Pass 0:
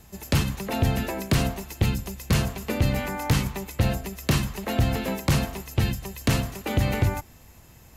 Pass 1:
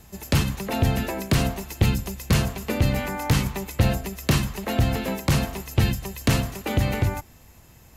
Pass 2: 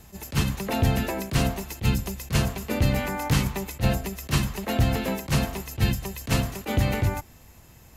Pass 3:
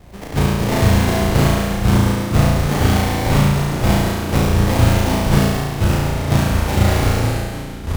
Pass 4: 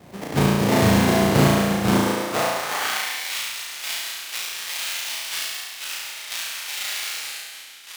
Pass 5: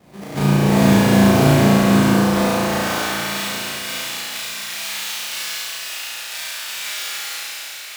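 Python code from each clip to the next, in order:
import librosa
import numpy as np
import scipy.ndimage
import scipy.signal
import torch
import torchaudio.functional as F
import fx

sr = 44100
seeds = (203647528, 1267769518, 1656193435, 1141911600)

y1 = fx.rider(x, sr, range_db=10, speed_s=0.5)
y1 = F.gain(torch.from_numpy(y1), 1.5).numpy()
y2 = fx.attack_slew(y1, sr, db_per_s=330.0)
y3 = fx.sample_hold(y2, sr, seeds[0], rate_hz=1400.0, jitter_pct=20)
y3 = fx.echo_pitch(y3, sr, ms=121, semitones=-5, count=3, db_per_echo=-6.0)
y3 = fx.room_flutter(y3, sr, wall_m=6.0, rt60_s=1.3)
y3 = F.gain(torch.from_numpy(y3), 4.0).numpy()
y4 = fx.filter_sweep_highpass(y3, sr, from_hz=170.0, to_hz=2700.0, start_s=1.74, end_s=3.34, q=0.95)
y5 = fx.rev_plate(y4, sr, seeds[1], rt60_s=4.6, hf_ratio=0.9, predelay_ms=0, drr_db=-6.5)
y5 = F.gain(torch.from_numpy(y5), -5.0).numpy()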